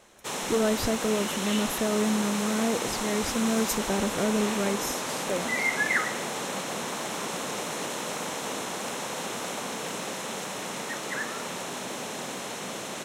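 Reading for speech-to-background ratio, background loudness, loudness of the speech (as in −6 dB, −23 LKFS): 2.0 dB, −31.0 LKFS, −29.0 LKFS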